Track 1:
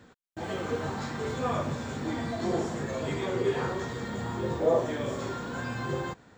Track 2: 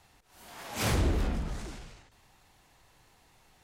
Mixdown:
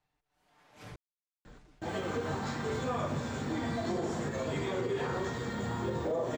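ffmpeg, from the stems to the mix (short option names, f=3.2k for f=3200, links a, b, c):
-filter_complex "[0:a]adelay=1450,volume=-1dB[a];[1:a]aemphasis=mode=reproduction:type=50kf,aecho=1:1:6.7:0.58,volume=-19.5dB,asplit=3[b][c][d];[b]atrim=end=0.96,asetpts=PTS-STARTPTS,afade=t=out:st=0.956:d=0.004:c=hsin[e];[c]atrim=start=0.96:end=1.46,asetpts=PTS-STARTPTS,volume=0[f];[d]atrim=start=1.46,asetpts=PTS-STARTPTS,afade=t=in:d=0.004:c=hsin[g];[e][f][g]concat=n=3:v=0:a=1[h];[a][h]amix=inputs=2:normalize=0,alimiter=level_in=0.5dB:limit=-24dB:level=0:latency=1:release=74,volume=-0.5dB"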